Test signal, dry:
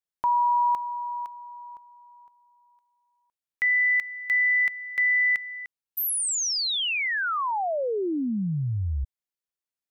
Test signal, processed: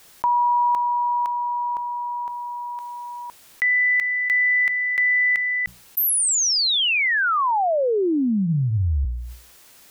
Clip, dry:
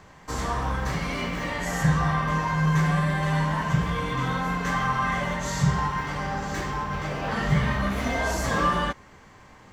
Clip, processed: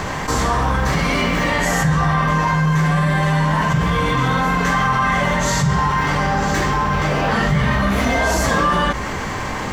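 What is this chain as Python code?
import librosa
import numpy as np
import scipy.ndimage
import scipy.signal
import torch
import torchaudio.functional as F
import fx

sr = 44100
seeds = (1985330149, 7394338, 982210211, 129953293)

y = fx.hum_notches(x, sr, base_hz=60, count=3)
y = fx.env_flatten(y, sr, amount_pct=70)
y = y * librosa.db_to_amplitude(3.0)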